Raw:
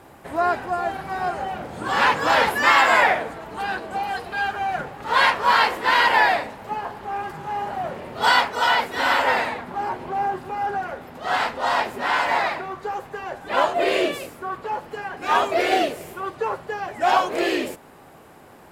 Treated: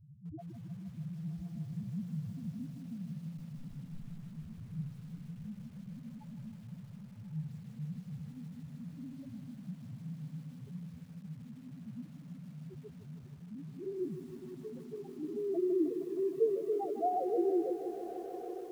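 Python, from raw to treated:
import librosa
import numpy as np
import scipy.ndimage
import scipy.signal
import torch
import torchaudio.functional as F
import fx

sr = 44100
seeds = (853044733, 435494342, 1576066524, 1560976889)

p1 = fx.lower_of_two(x, sr, delay_ms=6.9, at=(3.38, 4.29))
p2 = fx.filter_sweep_lowpass(p1, sr, from_hz=170.0, to_hz=480.0, start_s=13.62, end_s=16.72, q=2.3)
p3 = fx.over_compress(p2, sr, threshold_db=-30.0, ratio=-1.0)
p4 = p2 + (p3 * 10.0 ** (-2.5 / 20.0))
p5 = fx.spec_topn(p4, sr, count=1)
p6 = librosa.effects.preemphasis(p5, coef=0.8, zi=[0.0])
p7 = p6 + fx.echo_diffused(p6, sr, ms=1143, feedback_pct=49, wet_db=-12.0, dry=0)
p8 = fx.echo_crushed(p7, sr, ms=156, feedback_pct=80, bits=11, wet_db=-11.5)
y = p8 * 10.0 ** (9.5 / 20.0)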